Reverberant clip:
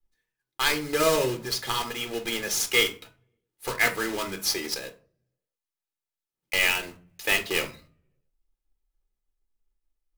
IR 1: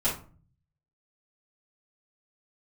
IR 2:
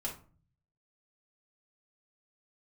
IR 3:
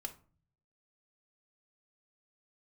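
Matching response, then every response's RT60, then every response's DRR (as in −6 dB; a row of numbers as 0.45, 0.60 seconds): 3; 0.40, 0.40, 0.40 seconds; −11.5, −3.0, 6.0 decibels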